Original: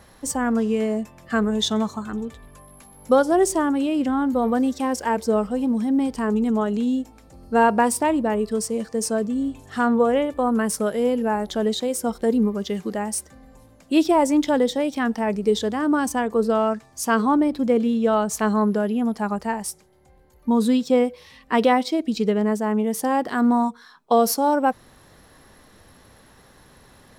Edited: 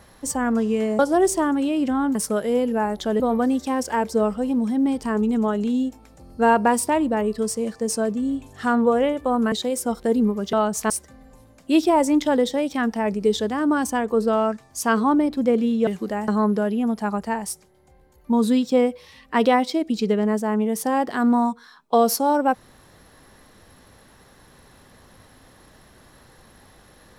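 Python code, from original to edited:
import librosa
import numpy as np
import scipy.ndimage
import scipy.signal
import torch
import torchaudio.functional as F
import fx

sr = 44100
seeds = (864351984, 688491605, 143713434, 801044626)

y = fx.edit(x, sr, fx.cut(start_s=0.99, length_s=2.18),
    fx.move(start_s=10.65, length_s=1.05, to_s=4.33),
    fx.swap(start_s=12.71, length_s=0.41, other_s=18.09, other_length_s=0.37), tone=tone)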